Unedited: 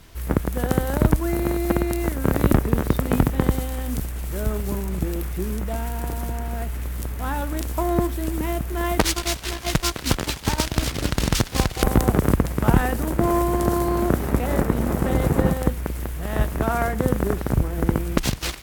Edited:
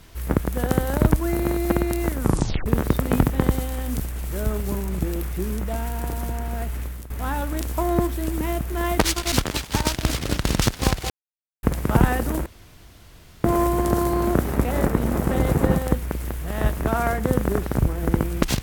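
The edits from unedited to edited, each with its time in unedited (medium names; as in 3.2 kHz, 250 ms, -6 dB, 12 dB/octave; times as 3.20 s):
2.19 s: tape stop 0.47 s
6.80–7.10 s: fade out, to -15.5 dB
9.32–10.05 s: delete
11.83–12.36 s: mute
13.19 s: insert room tone 0.98 s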